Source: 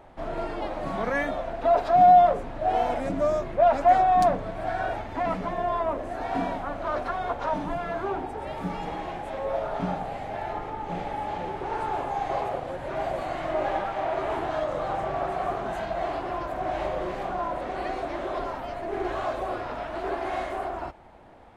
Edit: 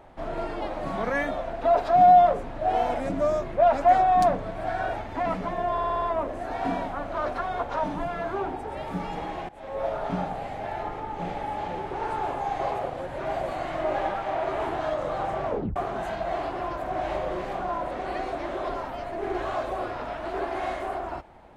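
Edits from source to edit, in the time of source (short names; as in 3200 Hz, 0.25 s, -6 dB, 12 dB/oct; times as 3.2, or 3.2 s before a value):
5.72 stutter 0.06 s, 6 plays
9.19–9.55 fade in, from -20 dB
15.16 tape stop 0.30 s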